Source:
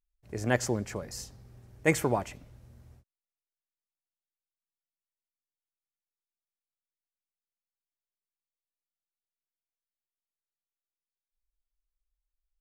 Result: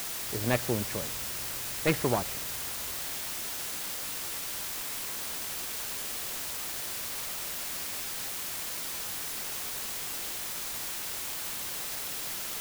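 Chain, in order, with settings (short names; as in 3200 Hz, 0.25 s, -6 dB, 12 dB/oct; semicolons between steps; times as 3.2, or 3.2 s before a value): self-modulated delay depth 0.25 ms; LPF 3300 Hz; requantised 6-bit, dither triangular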